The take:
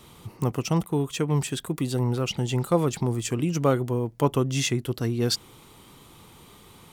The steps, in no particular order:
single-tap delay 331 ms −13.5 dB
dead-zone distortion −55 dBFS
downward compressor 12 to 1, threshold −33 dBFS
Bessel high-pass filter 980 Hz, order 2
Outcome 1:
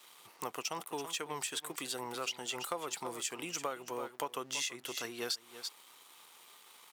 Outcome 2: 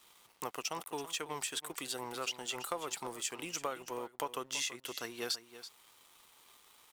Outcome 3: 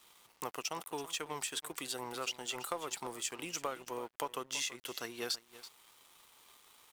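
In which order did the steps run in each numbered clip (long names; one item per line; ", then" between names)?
single-tap delay, then dead-zone distortion, then Bessel high-pass filter, then downward compressor
Bessel high-pass filter, then dead-zone distortion, then downward compressor, then single-tap delay
Bessel high-pass filter, then downward compressor, then single-tap delay, then dead-zone distortion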